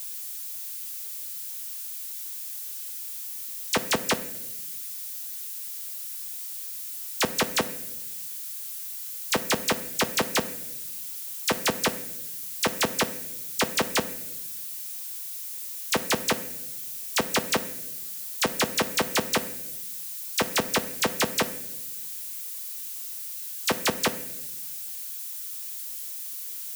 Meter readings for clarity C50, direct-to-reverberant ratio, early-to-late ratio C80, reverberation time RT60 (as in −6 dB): 14.5 dB, 10.5 dB, 16.5 dB, 0.90 s